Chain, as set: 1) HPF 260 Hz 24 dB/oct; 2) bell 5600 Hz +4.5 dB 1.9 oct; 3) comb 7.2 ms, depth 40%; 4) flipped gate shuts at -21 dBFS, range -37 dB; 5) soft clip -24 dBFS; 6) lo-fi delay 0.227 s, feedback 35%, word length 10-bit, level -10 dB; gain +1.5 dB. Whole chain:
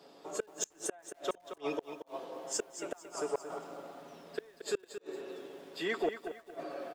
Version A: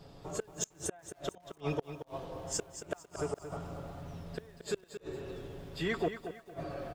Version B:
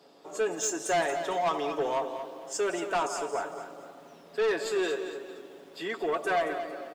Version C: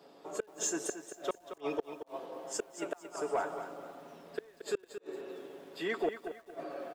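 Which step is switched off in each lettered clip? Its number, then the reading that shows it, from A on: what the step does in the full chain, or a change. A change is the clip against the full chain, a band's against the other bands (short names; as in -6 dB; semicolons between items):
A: 1, 125 Hz band +17.5 dB; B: 4, momentary loudness spread change +5 LU; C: 2, 4 kHz band -3.0 dB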